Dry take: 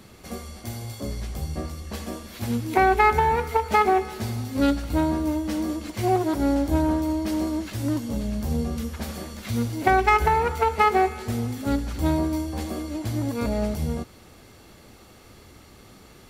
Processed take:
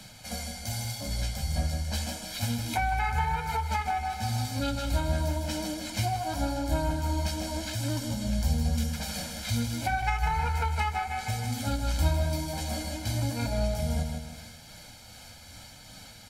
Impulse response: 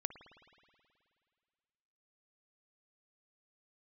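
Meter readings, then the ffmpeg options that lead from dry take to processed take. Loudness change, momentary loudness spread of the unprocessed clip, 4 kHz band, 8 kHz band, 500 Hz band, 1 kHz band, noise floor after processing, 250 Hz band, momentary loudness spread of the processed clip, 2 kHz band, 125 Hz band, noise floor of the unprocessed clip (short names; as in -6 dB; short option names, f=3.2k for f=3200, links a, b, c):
-6.0 dB, 14 LU, +3.0 dB, +3.5 dB, -10.5 dB, -8.0 dB, -49 dBFS, -9.5 dB, 16 LU, -6.0 dB, 0.0 dB, -50 dBFS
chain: -filter_complex "[0:a]aecho=1:1:1.3:0.96,tremolo=f=2.5:d=0.37,equalizer=f=5.7k:w=0.38:g=10,aecho=1:1:154|308|462|616|770:0.447|0.183|0.0751|0.0308|0.0126,acrossover=split=140[a][b];[b]acompressor=threshold=-27dB:ratio=3[c];[a][c]amix=inputs=2:normalize=0,flanger=delay=6.3:depth=6:regen=-48:speed=0.88:shape=sinusoidal"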